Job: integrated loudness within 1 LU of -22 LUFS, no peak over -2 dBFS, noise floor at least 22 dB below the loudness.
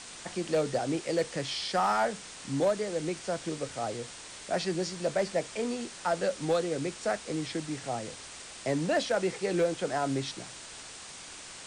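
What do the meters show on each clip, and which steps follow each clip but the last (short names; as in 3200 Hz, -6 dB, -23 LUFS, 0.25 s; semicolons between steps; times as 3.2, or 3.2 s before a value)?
clipped 0.4%; flat tops at -20.0 dBFS; noise floor -46 dBFS; noise floor target -54 dBFS; loudness -31.5 LUFS; peak -20.0 dBFS; loudness target -22.0 LUFS
-> clip repair -20 dBFS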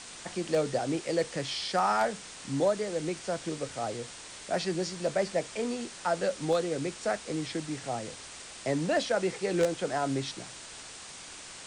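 clipped 0.0%; noise floor -46 dBFS; noise floor target -54 dBFS
-> denoiser 8 dB, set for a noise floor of -46 dBFS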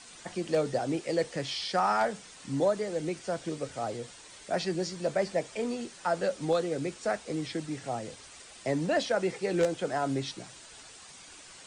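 noise floor -51 dBFS; noise floor target -54 dBFS
-> denoiser 6 dB, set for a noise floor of -51 dBFS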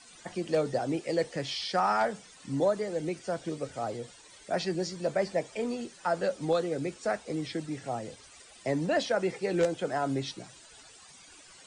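noise floor -54 dBFS; loudness -31.5 LUFS; peak -12.0 dBFS; loudness target -22.0 LUFS
-> gain +9.5 dB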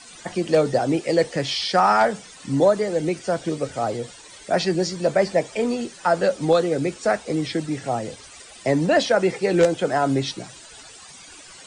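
loudness -22.0 LUFS; peak -2.5 dBFS; noise floor -44 dBFS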